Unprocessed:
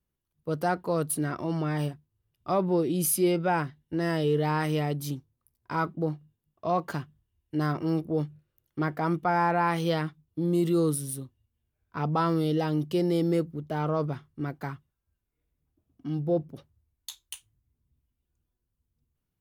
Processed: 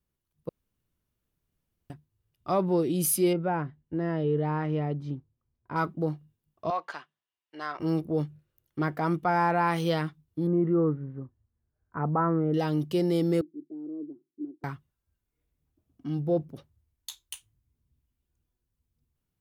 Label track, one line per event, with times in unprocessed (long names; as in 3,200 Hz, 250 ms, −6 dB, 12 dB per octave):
0.490000	1.900000	fill with room tone
3.330000	5.760000	head-to-tape spacing loss at 10 kHz 40 dB
6.700000	7.800000	band-pass filter 770–4,800 Hz
10.470000	12.540000	Butterworth low-pass 1,800 Hz
13.410000	14.640000	flat-topped band-pass 320 Hz, Q 3.7